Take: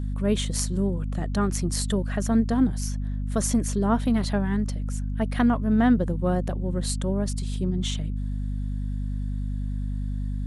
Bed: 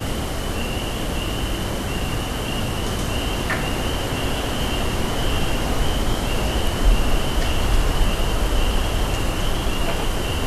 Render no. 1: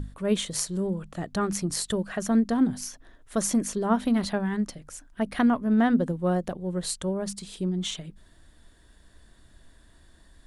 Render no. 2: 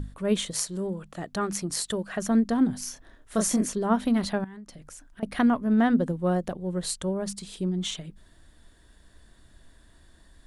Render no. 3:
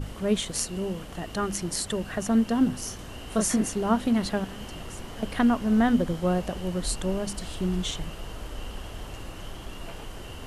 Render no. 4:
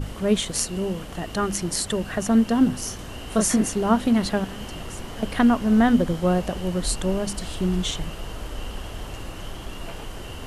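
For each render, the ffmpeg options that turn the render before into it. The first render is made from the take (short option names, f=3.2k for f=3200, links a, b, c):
-af "bandreject=f=50:t=h:w=6,bandreject=f=100:t=h:w=6,bandreject=f=150:t=h:w=6,bandreject=f=200:t=h:w=6,bandreject=f=250:t=h:w=6"
-filter_complex "[0:a]asettb=1/sr,asplit=3[a][b][c];[a]atrim=end=0.514[d];[b]atrim=start=0.51:end=2.13,asetpts=PTS-STARTPTS,afade=t=in:d=0.004:c=qsin,afade=t=out:st=1.616:d=0.004:c=qsin,lowshelf=f=190:g=-7.5[e];[c]atrim=start=2.126[f];[d][e]acrossfade=d=0.004:c1=hsin:c2=qsin[g];[g][f]acrossfade=d=0.004:c1=qsin:c2=hsin,asettb=1/sr,asplit=3[h][i][j];[h]atrim=end=2.844[k];[i]atrim=start=2.84:end=3.69,asetpts=PTS-STARTPTS,afade=t=in:d=0.004:c=qsin,afade=t=out:st=0.846:d=0.004:c=qsin,asplit=2[l][m];[m]adelay=28,volume=-4.5dB[n];[l][n]amix=inputs=2:normalize=0,atrim=end_sample=37485[o];[j]atrim=start=3.686[p];[k][o]acrossfade=d=0.004:c1=hsin:c2=qsin[q];[q][p]acrossfade=d=0.004:c1=qsin:c2=hsin,asettb=1/sr,asplit=3[r][s][t];[r]atrim=end=4.444[u];[s]atrim=start=4.44:end=5.23,asetpts=PTS-STARTPTS,afade=t=in:d=0.004:c=qsin,afade=t=out:st=0.786:d=0.004:c=qsin,acompressor=threshold=-40dB:ratio=10:attack=3.2:release=140:knee=1:detection=peak[v];[t]atrim=start=5.226[w];[u][v]acrossfade=d=0.004:c1=hsin:c2=qsin[x];[x][w]acrossfade=d=0.004:c1=qsin:c2=hsin"
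-filter_complex "[1:a]volume=-17dB[a];[0:a][a]amix=inputs=2:normalize=0"
-af "volume=4dB"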